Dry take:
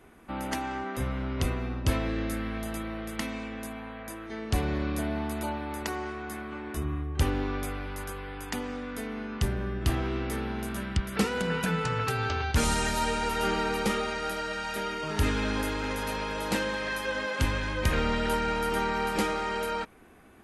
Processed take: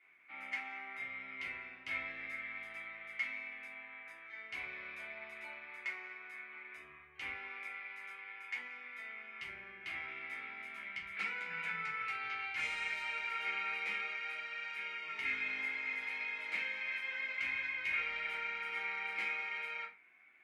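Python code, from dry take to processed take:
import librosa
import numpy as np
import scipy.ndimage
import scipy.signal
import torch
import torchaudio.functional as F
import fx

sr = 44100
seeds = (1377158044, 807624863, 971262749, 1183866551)

y = fx.bandpass_q(x, sr, hz=2200.0, q=14.0)
y = fx.room_shoebox(y, sr, seeds[0], volume_m3=160.0, walls='furnished', distance_m=3.2)
y = y * 10.0 ** (3.0 / 20.0)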